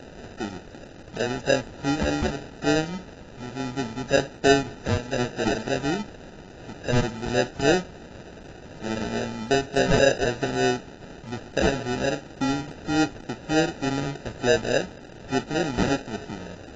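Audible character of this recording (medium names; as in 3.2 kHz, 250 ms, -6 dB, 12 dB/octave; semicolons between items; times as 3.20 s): a quantiser's noise floor 8-bit, dither triangular; phasing stages 4, 3.4 Hz, lowest notch 450–1600 Hz; aliases and images of a low sample rate 1.1 kHz, jitter 0%; AAC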